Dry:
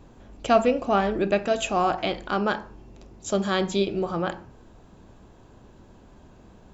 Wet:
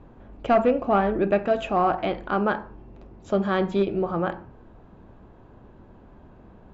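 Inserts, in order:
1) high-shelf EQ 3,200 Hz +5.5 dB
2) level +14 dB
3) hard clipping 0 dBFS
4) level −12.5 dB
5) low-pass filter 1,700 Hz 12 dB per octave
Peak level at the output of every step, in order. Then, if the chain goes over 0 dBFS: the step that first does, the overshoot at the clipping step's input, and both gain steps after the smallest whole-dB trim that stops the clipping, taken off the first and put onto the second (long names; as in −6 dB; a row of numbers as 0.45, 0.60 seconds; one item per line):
−6.5, +7.5, 0.0, −12.5, −12.0 dBFS
step 2, 7.5 dB
step 2 +6 dB, step 4 −4.5 dB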